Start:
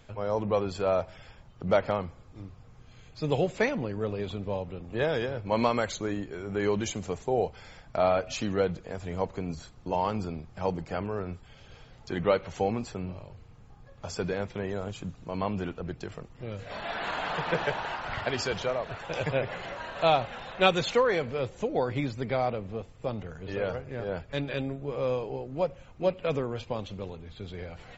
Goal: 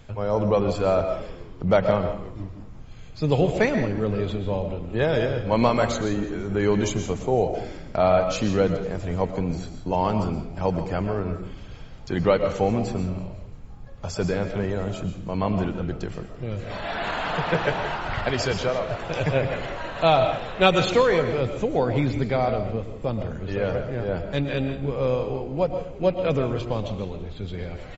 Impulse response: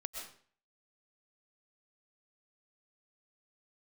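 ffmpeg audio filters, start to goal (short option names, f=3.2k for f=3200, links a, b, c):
-filter_complex "[0:a]asplit=6[a][b][c][d][e][f];[b]adelay=168,afreqshift=-74,volume=-19dB[g];[c]adelay=336,afreqshift=-148,volume=-23.3dB[h];[d]adelay=504,afreqshift=-222,volume=-27.6dB[i];[e]adelay=672,afreqshift=-296,volume=-31.9dB[j];[f]adelay=840,afreqshift=-370,volume=-36.2dB[k];[a][g][h][i][j][k]amix=inputs=6:normalize=0,asplit=2[l][m];[1:a]atrim=start_sample=2205,lowshelf=f=310:g=10[n];[m][n]afir=irnorm=-1:irlink=0,volume=2.5dB[o];[l][o]amix=inputs=2:normalize=0,volume=-2dB"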